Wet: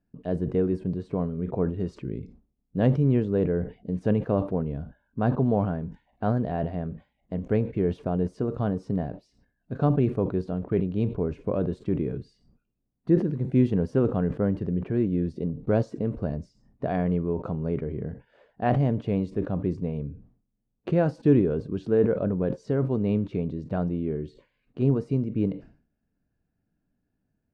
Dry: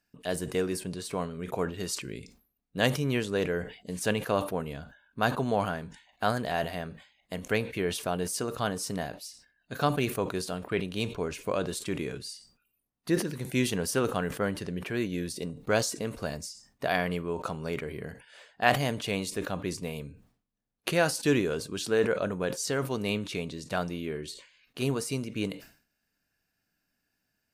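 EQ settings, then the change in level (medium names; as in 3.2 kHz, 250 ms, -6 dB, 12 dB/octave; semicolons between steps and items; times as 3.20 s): tape spacing loss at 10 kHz 27 dB; tilt shelf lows +10 dB, about 790 Hz; 0.0 dB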